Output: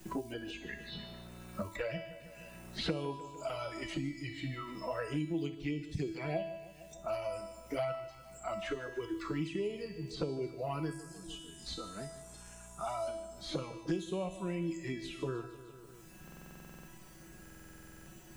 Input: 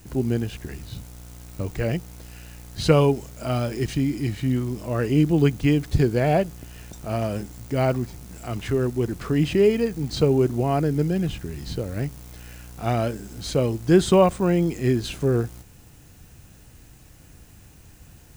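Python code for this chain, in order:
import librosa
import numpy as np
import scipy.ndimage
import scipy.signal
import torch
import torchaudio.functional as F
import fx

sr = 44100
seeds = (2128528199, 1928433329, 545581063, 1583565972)

y = fx.graphic_eq(x, sr, hz=(125, 250, 500, 2000, 8000), db=(-3, -10, -10, -11, 10), at=(10.91, 13.08))
y = fx.noise_reduce_blind(y, sr, reduce_db=16)
y = fx.room_flutter(y, sr, wall_m=10.1, rt60_s=0.23)
y = fx.env_flanger(y, sr, rest_ms=5.5, full_db=-15.0)
y = fx.hpss(y, sr, part='percussive', gain_db=4)
y = fx.comb_fb(y, sr, f0_hz=330.0, decay_s=0.67, harmonics='all', damping=0.0, mix_pct=90)
y = fx.echo_feedback(y, sr, ms=150, feedback_pct=45, wet_db=-17.0)
y = fx.buffer_glitch(y, sr, at_s=(16.23, 17.41), block=2048, repeats=13)
y = fx.band_squash(y, sr, depth_pct=100)
y = y * 10.0 ** (3.5 / 20.0)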